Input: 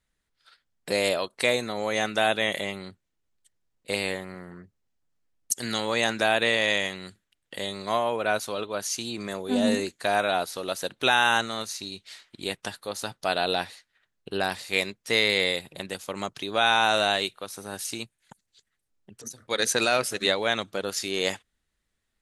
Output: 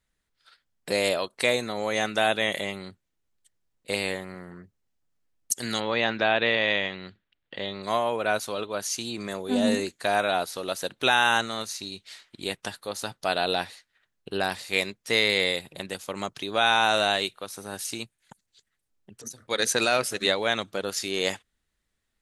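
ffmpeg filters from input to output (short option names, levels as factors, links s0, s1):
-filter_complex "[0:a]asplit=3[s0][s1][s2];[s0]afade=t=out:st=5.79:d=0.02[s3];[s1]lowpass=f=4000:w=0.5412,lowpass=f=4000:w=1.3066,afade=t=in:st=5.79:d=0.02,afade=t=out:st=7.82:d=0.02[s4];[s2]afade=t=in:st=7.82:d=0.02[s5];[s3][s4][s5]amix=inputs=3:normalize=0"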